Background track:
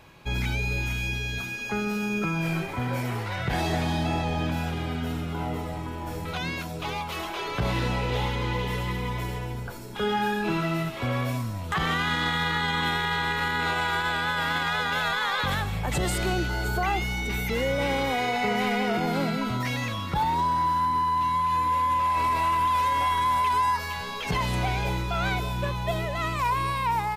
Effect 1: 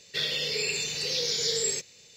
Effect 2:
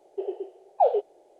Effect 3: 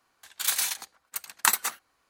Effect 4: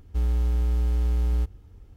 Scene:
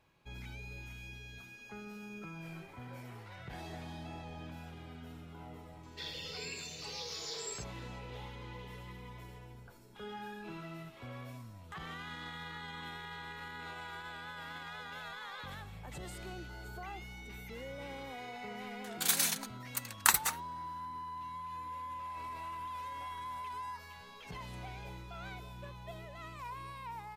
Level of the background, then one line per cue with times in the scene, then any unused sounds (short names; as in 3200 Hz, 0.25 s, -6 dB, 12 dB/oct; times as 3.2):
background track -19 dB
5.83 add 1 -14.5 dB
18.61 add 3 -3.5 dB
not used: 2, 4